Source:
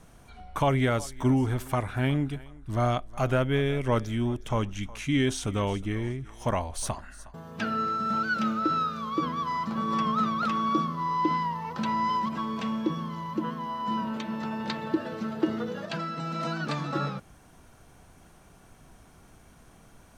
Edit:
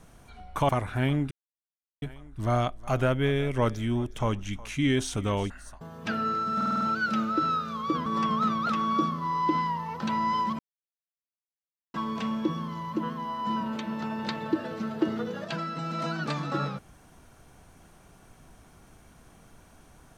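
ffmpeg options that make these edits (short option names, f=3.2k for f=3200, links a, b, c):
-filter_complex "[0:a]asplit=11[a][b][c][d][e][f][g][h][i][j][k];[a]atrim=end=0.692[l];[b]atrim=start=1.698:end=2.32,asetpts=PTS-STARTPTS,afade=t=out:st=0.618:d=0.004:c=hsin,apad=pad_dur=0.71[m];[c]atrim=start=2.32:end=5.802,asetpts=PTS-STARTPTS,afade=t=in:d=0.004:c=hsin[n];[d]atrim=start=7.028:end=8.142[o];[e]atrim=start=8.088:end=8.142[p];[f]atrim=start=8.088:end=8.142[q];[g]atrim=start=8.088:end=8.142[r];[h]atrim=start=8.088:end=8.142[s];[i]atrim=start=8.088:end=9.342[t];[j]atrim=start=9.818:end=12.35,asetpts=PTS-STARTPTS,afade=t=out:st=2.528:d=0.004:c=hsin,apad=pad_dur=1.35[u];[k]atrim=start=12.35,asetpts=PTS-STARTPTS,afade=t=in:d=0.004:c=hsin[v];[m][n]concat=n=2:v=0:a=1[w];[l][w]acrossfade=d=0.004:c1=hsin:c2=hsin[x];[x][o]acrossfade=d=0.004:c1=hsin:c2=hsin[y];[y][p]acrossfade=d=0.004:c1=hsin:c2=hsin[z];[z][q]acrossfade=d=0.004:c1=hsin:c2=hsin[aa];[aa][r]acrossfade=d=0.004:c1=hsin:c2=hsin[ab];[ab][s]acrossfade=d=0.004:c1=hsin:c2=hsin[ac];[ac][t]acrossfade=d=0.004:c1=hsin:c2=hsin[ad];[u][v]concat=n=2:v=0:a=1[ae];[ad][ae]acrossfade=d=0.004:c1=hsin:c2=hsin"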